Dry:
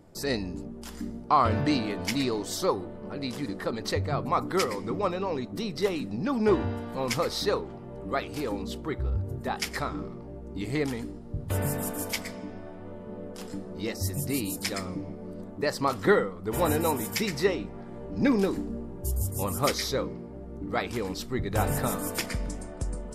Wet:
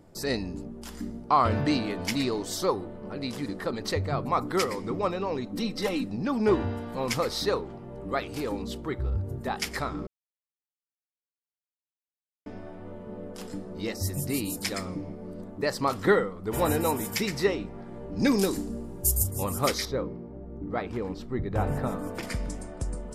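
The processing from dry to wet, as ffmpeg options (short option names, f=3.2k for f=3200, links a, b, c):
-filter_complex "[0:a]asettb=1/sr,asplit=3[a][b][c];[a]atrim=end=5.464[d];[b]atrim=start=5.46:end=6.04,asetpts=PTS-STARTPTS,afade=t=in:d=0.004:c=qsin,afade=t=out:st=0.576:d=0.004:c=qsin,aecho=1:1:3.8:0.74,atrim=end_sample=25578[e];[c]atrim=start=6.036[f];[d][e]acrossfade=d=0.004:c1=hsin:c2=qsin[g];[g][f]acrossfade=d=0.004:c1=qsin:c2=hsin,asplit=3[h][i][j];[h]afade=t=out:st=18.18:d=0.02[k];[i]bass=f=250:g=0,treble=f=4k:g=14,afade=t=in:st=18.18:d=0.02,afade=t=out:st=19.22:d=0.02[l];[j]afade=t=in:st=19.22:d=0.02[m];[k][l][m]amix=inputs=3:normalize=0,asettb=1/sr,asplit=3[n][o][p];[n]atrim=end=19.854[q];[o]atrim=start=19.85:end=22.23,asetpts=PTS-STARTPTS,afade=t=in:d=0.004:c=qsin,afade=t=out:st=2.376:d=0.004:c=qsin,lowpass=f=1.1k:p=1[r];[p]atrim=start=22.226[s];[q][r]acrossfade=d=0.004:c1=hsin:c2=qsin[t];[t][s]acrossfade=d=0.004:c1=qsin:c2=hsin,asplit=3[u][v][w];[u]atrim=end=10.07,asetpts=PTS-STARTPTS,afade=t=out:st=10.066:d=0.004:c=hsin[x];[v]atrim=start=10.07:end=12.46,asetpts=PTS-STARTPTS,volume=0[y];[w]atrim=start=12.46,asetpts=PTS-STARTPTS,afade=t=in:d=0.004:c=hsin[z];[x][y][z]concat=n=3:v=0:a=1"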